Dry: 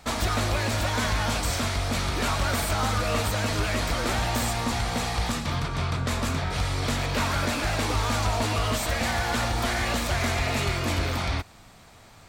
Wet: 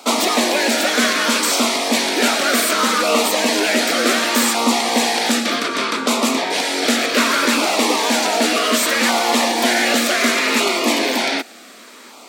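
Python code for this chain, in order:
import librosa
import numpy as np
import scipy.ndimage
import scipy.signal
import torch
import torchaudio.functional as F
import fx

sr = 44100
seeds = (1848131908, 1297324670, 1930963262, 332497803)

p1 = fx.rider(x, sr, range_db=10, speed_s=0.5)
p2 = x + (p1 * 10.0 ** (0.0 / 20.0))
p3 = scipy.signal.sosfilt(scipy.signal.cheby1(5, 1.0, 230.0, 'highpass', fs=sr, output='sos'), p2)
p4 = fx.filter_lfo_notch(p3, sr, shape='saw_down', hz=0.66, low_hz=670.0, high_hz=1800.0, q=2.2)
y = p4 * 10.0 ** (7.0 / 20.0)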